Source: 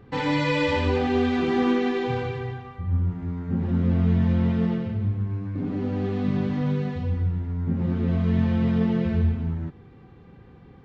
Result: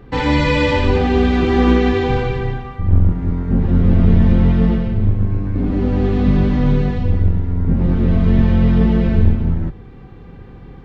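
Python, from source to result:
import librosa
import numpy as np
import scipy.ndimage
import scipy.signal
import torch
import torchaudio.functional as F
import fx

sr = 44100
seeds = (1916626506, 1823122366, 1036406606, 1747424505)

p1 = fx.octave_divider(x, sr, octaves=2, level_db=0.0)
p2 = fx.rider(p1, sr, range_db=10, speed_s=2.0)
y = p1 + (p2 * librosa.db_to_amplitude(2.0))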